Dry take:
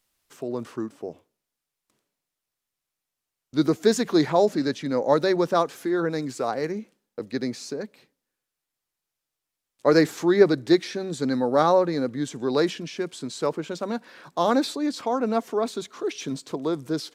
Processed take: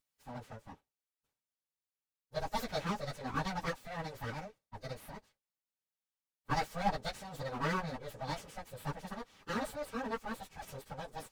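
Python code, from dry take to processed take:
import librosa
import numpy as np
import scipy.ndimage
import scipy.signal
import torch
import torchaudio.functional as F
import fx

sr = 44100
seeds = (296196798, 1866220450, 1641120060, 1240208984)

y = np.abs(x)
y = fx.stretch_vocoder_free(y, sr, factor=0.66)
y = fx.notch_comb(y, sr, f0_hz=350.0)
y = F.gain(torch.from_numpy(y), -6.0).numpy()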